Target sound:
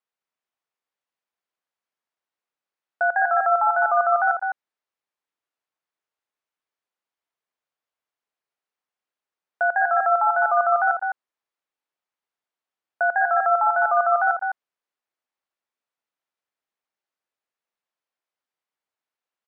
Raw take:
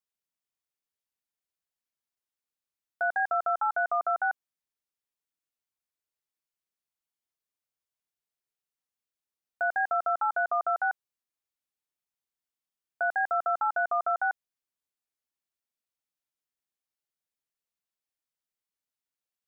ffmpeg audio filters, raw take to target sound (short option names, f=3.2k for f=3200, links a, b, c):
-filter_complex "[0:a]bandpass=f=920:t=q:w=0.56:csg=0,asplit=2[a][b];[b]aecho=0:1:82|198|207:0.168|0.112|0.501[c];[a][c]amix=inputs=2:normalize=0,volume=7.5dB"